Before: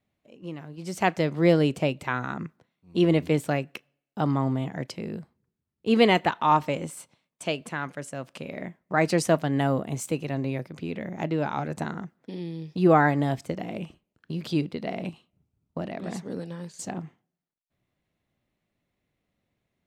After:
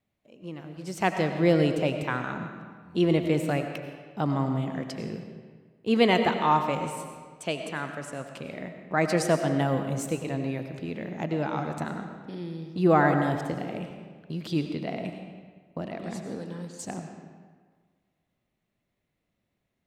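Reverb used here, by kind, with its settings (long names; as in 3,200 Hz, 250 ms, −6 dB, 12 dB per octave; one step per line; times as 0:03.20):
comb and all-pass reverb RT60 1.6 s, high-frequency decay 0.75×, pre-delay 55 ms, DRR 6 dB
level −2 dB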